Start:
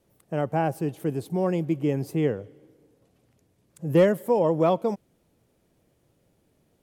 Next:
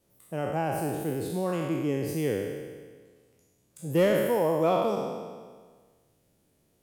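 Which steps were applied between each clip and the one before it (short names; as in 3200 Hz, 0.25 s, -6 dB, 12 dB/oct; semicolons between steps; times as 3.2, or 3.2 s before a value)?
spectral trails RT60 1.57 s; high shelf 4200 Hz +7.5 dB; gain -6 dB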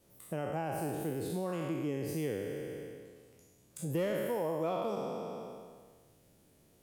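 compressor 2.5:1, threshold -41 dBFS, peak gain reduction 14.5 dB; gain +3.5 dB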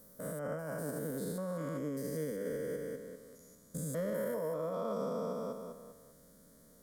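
stepped spectrum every 0.2 s; limiter -34.5 dBFS, peak gain reduction 9.5 dB; fixed phaser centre 530 Hz, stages 8; gain +8 dB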